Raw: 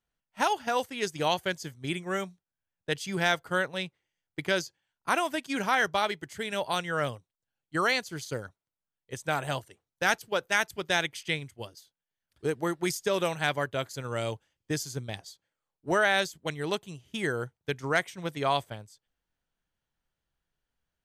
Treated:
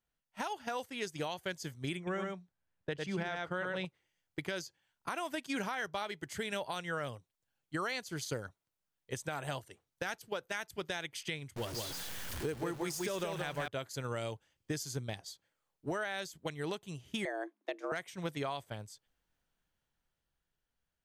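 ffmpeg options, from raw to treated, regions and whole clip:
ffmpeg -i in.wav -filter_complex "[0:a]asettb=1/sr,asplit=3[link_01][link_02][link_03];[link_01]atrim=end=1.974[link_04];[link_02]atrim=start=1.97:end=3.85,asetpts=PTS-STARTPTS,afade=type=in:duration=0.004:curve=qsin,afade=type=out:start_time=1.876:duration=0.004:curve=qsin,aemphasis=mode=reproduction:type=75fm,aecho=1:1:102:0.596,atrim=end_sample=82908[link_05];[link_03]atrim=start=3.846[link_06];[link_04][link_05]acrossfade=duration=0.004:curve1=hsin:curve2=qsin[link_07];[link_07][link_06]acrossfade=duration=0.004:curve1=qsin:curve2=hsin,asettb=1/sr,asplit=3[link_08][link_09][link_10];[link_08]atrim=end=11.564[link_11];[link_09]atrim=start=11.56:end=13.68,asetpts=PTS-STARTPTS,afade=type=in:duration=0.004:curve=qsin,afade=type=out:start_time=2.116:duration=0.004:curve=qsin,aeval=exprs='val(0)+0.5*0.0133*sgn(val(0))':channel_layout=same,aecho=1:1:175:0.562,atrim=end_sample=93492[link_12];[link_10]atrim=start=13.676[link_13];[link_11][link_12]acrossfade=duration=0.004:curve1=hsin:curve2=qsin[link_14];[link_14][link_13]acrossfade=duration=0.004:curve1=qsin:curve2=hsin,asettb=1/sr,asplit=3[link_15][link_16][link_17];[link_15]atrim=end=17.254[link_18];[link_16]atrim=start=17.25:end=17.92,asetpts=PTS-STARTPTS,afade=type=in:duration=0.004:curve=qsin,afade=type=out:start_time=0.666:duration=0.004:curve=qsin,lowpass=frequency=2200:poles=1,asubboost=boost=9:cutoff=72,afreqshift=210[link_19];[link_17]atrim=start=17.916[link_20];[link_18][link_19]acrossfade=duration=0.004:curve1=hsin:curve2=qsin[link_21];[link_21][link_20]acrossfade=duration=0.004:curve1=qsin:curve2=hsin,dynaudnorm=framelen=160:gausssize=17:maxgain=5.5dB,alimiter=limit=-17.5dB:level=0:latency=1:release=328,acompressor=threshold=-36dB:ratio=2,volume=-2.5dB" out.wav

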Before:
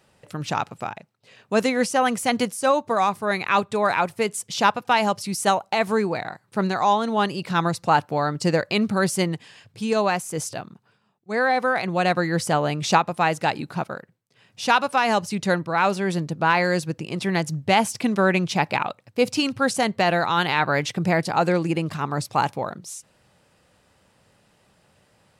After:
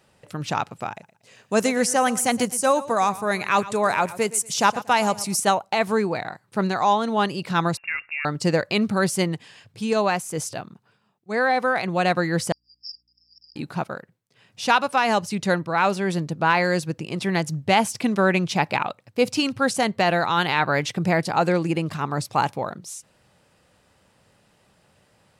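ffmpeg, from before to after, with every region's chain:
ffmpeg -i in.wav -filter_complex "[0:a]asettb=1/sr,asplit=3[link_01][link_02][link_03];[link_01]atrim=end=0.914[link_04];[link_02]atrim=start=0.91:end=5.4,asetpts=PTS-STARTPTS,afade=type=in:duration=0.004:curve=qsin,afade=type=out:start_time=4.486:duration=0.004:curve=qsin,highshelf=frequency=5100:width_type=q:width=1.5:gain=6,aecho=1:1:118|236|354:0.141|0.0396|0.0111,atrim=end_sample=198009[link_05];[link_03]atrim=start=5.396[link_06];[link_04][link_05]acrossfade=duration=0.004:curve1=hsin:curve2=qsin[link_07];[link_07][link_06]acrossfade=duration=0.004:curve1=qsin:curve2=hsin,asettb=1/sr,asplit=3[link_08][link_09][link_10];[link_08]atrim=end=7.774[link_11];[link_09]atrim=start=7.77:end=8.25,asetpts=PTS-STARTPTS,afade=type=in:duration=0.004:curve=qsin,afade=type=out:start_time=0.476:duration=0.004:curve=qsin,acompressor=threshold=-27dB:ratio=3:attack=3.2:release=140:knee=1:detection=peak,lowpass=frequency=2500:width_type=q:width=0.5098,lowpass=frequency=2500:width_type=q:width=0.6013,lowpass=frequency=2500:width_type=q:width=0.9,lowpass=frequency=2500:width_type=q:width=2.563,afreqshift=-2900,bandreject=frequency=60:width_type=h:width=6,bandreject=frequency=120:width_type=h:width=6[link_12];[link_10]atrim=start=8.246[link_13];[link_11][link_12]acrossfade=duration=0.004:curve1=hsin:curve2=qsin[link_14];[link_14][link_13]acrossfade=duration=0.004:curve1=qsin:curve2=hsin,asettb=1/sr,asplit=3[link_15][link_16][link_17];[link_15]atrim=end=12.524[link_18];[link_16]atrim=start=12.52:end=13.56,asetpts=PTS-STARTPTS,afade=type=in:duration=0.004:curve=qsin,afade=type=out:start_time=1.036:duration=0.004:curve=qsin,asuperpass=centerf=5100:order=20:qfactor=6.7,aeval=exprs='val(0)+0.000178*(sin(2*PI*60*n/s)+sin(2*PI*2*60*n/s)/2+sin(2*PI*3*60*n/s)/3+sin(2*PI*4*60*n/s)/4+sin(2*PI*5*60*n/s)/5)':channel_layout=same[link_19];[link_17]atrim=start=13.556[link_20];[link_18][link_19]acrossfade=duration=0.004:curve1=hsin:curve2=qsin[link_21];[link_21][link_20]acrossfade=duration=0.004:curve1=qsin:curve2=hsin" out.wav

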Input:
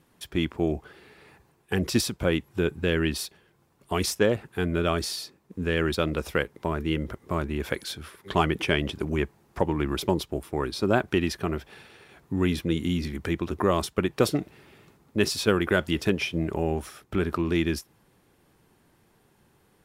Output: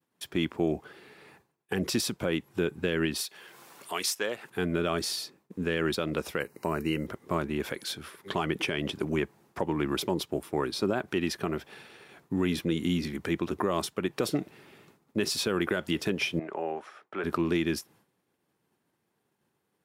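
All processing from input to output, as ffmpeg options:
ffmpeg -i in.wav -filter_complex "[0:a]asettb=1/sr,asplit=3[link_01][link_02][link_03];[link_01]atrim=end=3.214[link_04];[link_02]atrim=start=3.21:end=4.5,asetpts=PTS-STARTPTS,afade=type=in:duration=0.004:curve=qsin,afade=type=out:start_time=1.286:duration=0.004:curve=qsin,highpass=frequency=1200:poles=1,acompressor=mode=upward:threshold=-33dB:ratio=2.5:attack=3.2:release=140:knee=2.83:detection=peak[link_05];[link_03]atrim=start=4.496[link_06];[link_04][link_05]acrossfade=duration=0.004:curve1=hsin:curve2=qsin[link_07];[link_07][link_06]acrossfade=duration=0.004:curve1=qsin:curve2=hsin,asettb=1/sr,asplit=3[link_08][link_09][link_10];[link_08]atrim=end=6.404[link_11];[link_09]atrim=start=6.4:end=7.07,asetpts=PTS-STARTPTS,afade=type=in:duration=0.004:curve=qsin,afade=type=out:start_time=0.666:duration=0.004:curve=qsin,asuperstop=centerf=3400:order=20:qfactor=4.2,highshelf=frequency=6500:gain=11.5[link_12];[link_10]atrim=start=7.066[link_13];[link_11][link_12]acrossfade=duration=0.004:curve1=hsin:curve2=qsin[link_14];[link_14][link_13]acrossfade=duration=0.004:curve1=qsin:curve2=hsin,asettb=1/sr,asplit=3[link_15][link_16][link_17];[link_15]atrim=end=16.394[link_18];[link_16]atrim=start=16.39:end=17.24,asetpts=PTS-STARTPTS,afade=type=in:duration=0.004:curve=qsin,afade=type=out:start_time=0.846:duration=0.004:curve=qsin,highpass=130,lowpass=6300,acrossover=split=450 2300:gain=0.141 1 0.251[link_19][link_20][link_21];[link_19][link_20][link_21]amix=inputs=3:normalize=0[link_22];[link_17]atrim=start=17.236[link_23];[link_18][link_22]acrossfade=duration=0.004:curve1=hsin:curve2=qsin[link_24];[link_24][link_23]acrossfade=duration=0.004:curve1=qsin:curve2=hsin,highpass=140,agate=range=-33dB:threshold=-54dB:ratio=3:detection=peak,alimiter=limit=-16.5dB:level=0:latency=1:release=123" out.wav

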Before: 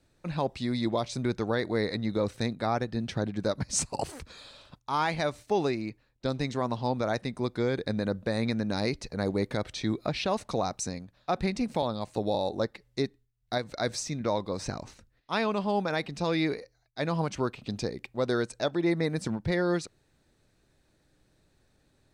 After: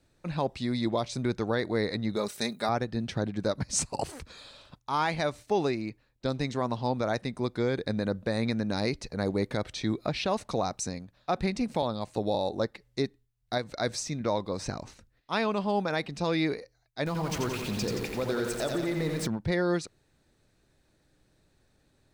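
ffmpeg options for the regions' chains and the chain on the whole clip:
ffmpeg -i in.wav -filter_complex "[0:a]asettb=1/sr,asplit=3[link_01][link_02][link_03];[link_01]atrim=end=2.164[link_04];[link_02]atrim=start=2.16:end=2.69,asetpts=PTS-STARTPTS,afade=type=in:duration=0.004:curve=qsin,afade=type=out:start_time=0.526:duration=0.004:curve=qsin,aemphasis=mode=production:type=bsi,aecho=1:1:4.9:0.51,atrim=end_sample=23373[link_05];[link_03]atrim=start=2.686[link_06];[link_04][link_05]acrossfade=duration=0.004:curve1=hsin:curve2=qsin[link_07];[link_07][link_06]acrossfade=duration=0.004:curve1=qsin:curve2=hsin,asettb=1/sr,asplit=3[link_08][link_09][link_10];[link_08]atrim=end=17.064[link_11];[link_09]atrim=start=17.06:end=19.27,asetpts=PTS-STARTPTS,afade=type=in:duration=0.004:curve=qsin,afade=type=out:start_time=2.206:duration=0.004:curve=qsin,aeval=exprs='val(0)+0.5*0.0178*sgn(val(0))':channel_layout=same,acompressor=threshold=-27dB:ratio=3:attack=3.2:release=140:knee=1:detection=peak,aecho=1:1:87|174|261|348|435|522|609|696:0.596|0.351|0.207|0.122|0.0722|0.0426|0.0251|0.0148,atrim=end_sample=97461[link_12];[link_10]atrim=start=19.266[link_13];[link_11][link_12]acrossfade=duration=0.004:curve1=hsin:curve2=qsin[link_14];[link_14][link_13]acrossfade=duration=0.004:curve1=qsin:curve2=hsin" out.wav

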